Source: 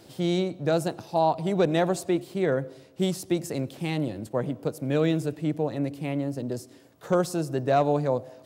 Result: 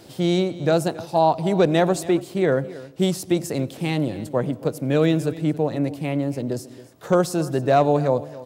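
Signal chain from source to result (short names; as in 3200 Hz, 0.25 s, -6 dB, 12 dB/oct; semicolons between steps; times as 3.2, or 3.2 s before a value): echo 0.276 s -18 dB; gain +5 dB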